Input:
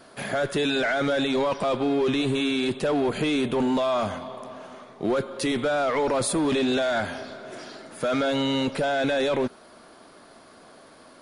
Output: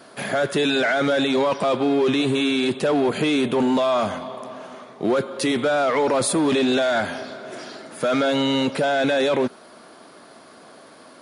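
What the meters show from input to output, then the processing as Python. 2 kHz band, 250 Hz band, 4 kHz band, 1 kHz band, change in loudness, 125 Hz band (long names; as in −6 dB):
+4.0 dB, +4.0 dB, +4.0 dB, +4.0 dB, +4.0 dB, +2.0 dB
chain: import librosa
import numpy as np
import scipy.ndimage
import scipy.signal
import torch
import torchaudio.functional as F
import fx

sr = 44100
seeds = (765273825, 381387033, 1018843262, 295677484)

y = scipy.signal.sosfilt(scipy.signal.butter(2, 120.0, 'highpass', fs=sr, output='sos'), x)
y = F.gain(torch.from_numpy(y), 4.0).numpy()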